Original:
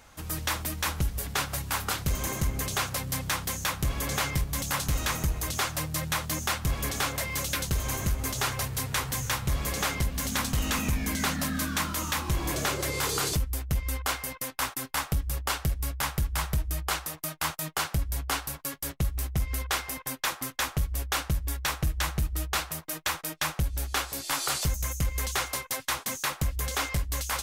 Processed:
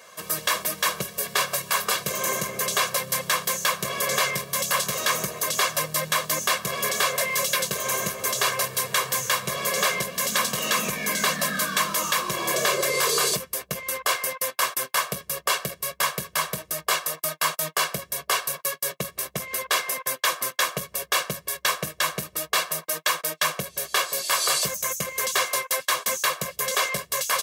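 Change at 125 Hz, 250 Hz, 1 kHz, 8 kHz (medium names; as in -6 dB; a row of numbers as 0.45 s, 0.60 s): -9.0 dB, -3.0 dB, +6.5 dB, +6.5 dB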